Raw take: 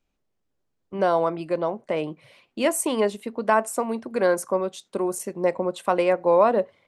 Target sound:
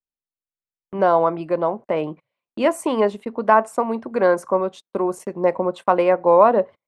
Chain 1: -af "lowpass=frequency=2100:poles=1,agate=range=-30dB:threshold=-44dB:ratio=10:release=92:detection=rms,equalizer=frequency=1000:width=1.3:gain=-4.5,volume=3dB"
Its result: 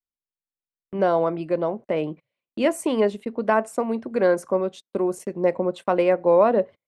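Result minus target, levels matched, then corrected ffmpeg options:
1,000 Hz band −4.0 dB
-af "lowpass=frequency=2100:poles=1,agate=range=-30dB:threshold=-44dB:ratio=10:release=92:detection=rms,equalizer=frequency=1000:width=1.3:gain=4.5,volume=3dB"

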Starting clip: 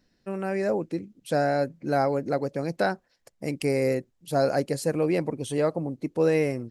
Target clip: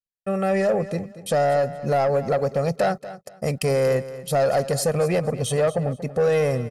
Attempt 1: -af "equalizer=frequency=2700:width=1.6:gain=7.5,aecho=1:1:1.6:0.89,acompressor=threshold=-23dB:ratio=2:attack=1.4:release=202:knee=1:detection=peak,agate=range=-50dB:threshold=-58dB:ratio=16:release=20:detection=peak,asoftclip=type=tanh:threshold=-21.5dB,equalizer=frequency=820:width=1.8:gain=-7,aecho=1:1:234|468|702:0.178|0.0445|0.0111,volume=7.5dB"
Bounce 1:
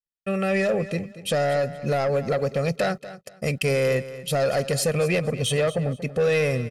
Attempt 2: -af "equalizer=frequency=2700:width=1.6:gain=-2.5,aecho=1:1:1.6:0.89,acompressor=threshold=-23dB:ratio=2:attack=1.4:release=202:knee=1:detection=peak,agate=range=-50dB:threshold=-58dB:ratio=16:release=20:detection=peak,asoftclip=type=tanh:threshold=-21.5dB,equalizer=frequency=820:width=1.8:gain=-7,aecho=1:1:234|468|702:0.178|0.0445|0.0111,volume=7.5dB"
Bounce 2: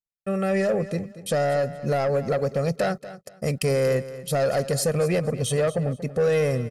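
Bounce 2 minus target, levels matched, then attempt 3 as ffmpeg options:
1,000 Hz band −3.5 dB
-af "equalizer=frequency=2700:width=1.6:gain=-2.5,aecho=1:1:1.6:0.89,acompressor=threshold=-23dB:ratio=2:attack=1.4:release=202:knee=1:detection=peak,agate=range=-50dB:threshold=-58dB:ratio=16:release=20:detection=peak,asoftclip=type=tanh:threshold=-21.5dB,aecho=1:1:234|468|702:0.178|0.0445|0.0111,volume=7.5dB"

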